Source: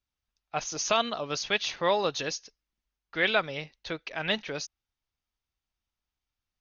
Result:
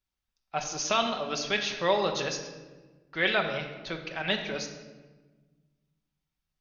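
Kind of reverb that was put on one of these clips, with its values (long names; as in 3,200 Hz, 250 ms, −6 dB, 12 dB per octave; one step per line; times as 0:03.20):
rectangular room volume 1,000 cubic metres, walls mixed, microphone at 1.1 metres
level −1.5 dB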